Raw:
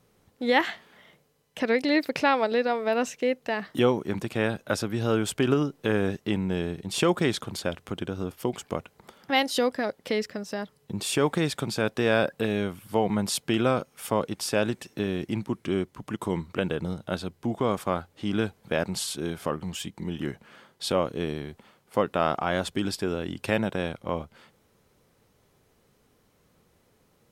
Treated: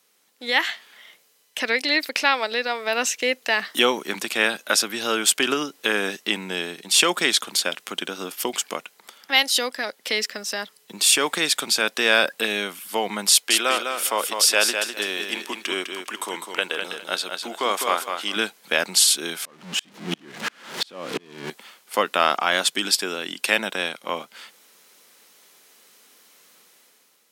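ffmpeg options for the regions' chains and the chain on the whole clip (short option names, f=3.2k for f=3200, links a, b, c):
-filter_complex "[0:a]asettb=1/sr,asplit=3[a][b][c];[a]atrim=end=13.304[d];[b]atrim=start=13.3:end=18.36,asetpts=PTS-STARTPTS,afade=t=in:d=0.004:c=qsin,afade=t=out:st=5.056:d=0.004:c=qsin,bass=f=250:g=-14,treble=f=4k:g=-1,aecho=1:1:203|406|609:0.501|0.11|0.0243,atrim=end_sample=223146[e];[c]atrim=start=18.356[f];[d][e]acrossfade=d=0.004:c1=hsin:c2=qsin[g];[g][f]acrossfade=d=0.004:c1=qsin:c2=hsin,asettb=1/sr,asplit=3[h][i][j];[h]atrim=end=19.454[k];[i]atrim=start=19.45:end=21.5,asetpts=PTS-STARTPTS,afade=t=in:d=0.004:c=qsin,afade=t=out:st=2.046:d=0.004:c=qsin,aeval=exprs='val(0)+0.5*0.0447*sgn(val(0))':c=same,aemphasis=mode=reproduction:type=riaa,aeval=exprs='val(0)*pow(10,-37*if(lt(mod(-2.9*n/s,1),2*abs(-2.9)/1000),1-mod(-2.9*n/s,1)/(2*abs(-2.9)/1000),(mod(-2.9*n/s,1)-2*abs(-2.9)/1000)/(1-2*abs(-2.9)/1000))/20)':c=same[l];[j]atrim=start=21.496[m];[k][l]acrossfade=d=0.004:c1=hsin:c2=qsin[n];[n][m]acrossfade=d=0.004:c1=qsin:c2=hsin,highpass=f=210:w=0.5412,highpass=f=210:w=1.3066,tiltshelf=f=1.1k:g=-10,dynaudnorm=f=200:g=7:m=10dB,volume=-1dB"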